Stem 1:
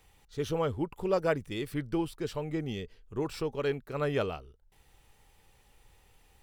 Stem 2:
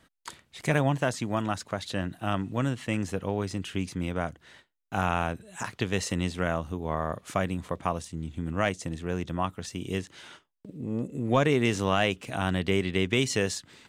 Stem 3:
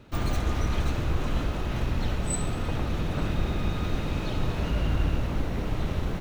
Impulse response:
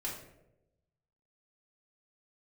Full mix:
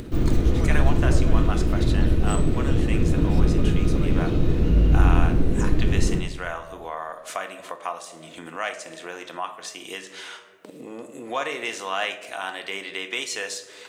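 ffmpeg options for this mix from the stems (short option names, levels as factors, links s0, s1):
-filter_complex "[0:a]alimiter=limit=0.0668:level=0:latency=1,volume=0.596[s0];[1:a]highpass=700,volume=0.75,asplit=2[s1][s2];[s2]volume=0.668[s3];[2:a]lowshelf=f=560:t=q:w=1.5:g=10,volume=0.473,asplit=2[s4][s5];[s5]volume=0.631[s6];[3:a]atrim=start_sample=2205[s7];[s3][s6]amix=inputs=2:normalize=0[s8];[s8][s7]afir=irnorm=-1:irlink=0[s9];[s0][s1][s4][s9]amix=inputs=4:normalize=0,acompressor=mode=upward:threshold=0.0398:ratio=2.5"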